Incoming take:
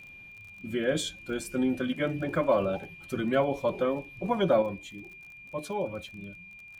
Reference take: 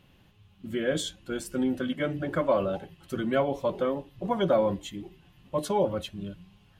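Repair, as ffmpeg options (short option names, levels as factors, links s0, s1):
-af "adeclick=t=4,bandreject=f=2400:w=30,asetnsamples=n=441:p=0,asendcmd='4.62 volume volume 6.5dB',volume=1"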